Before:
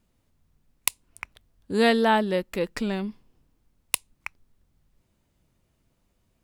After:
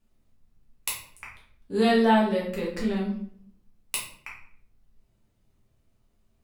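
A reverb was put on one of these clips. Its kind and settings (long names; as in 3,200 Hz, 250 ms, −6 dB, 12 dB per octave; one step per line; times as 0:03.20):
rectangular room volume 85 cubic metres, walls mixed, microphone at 1.5 metres
level −9 dB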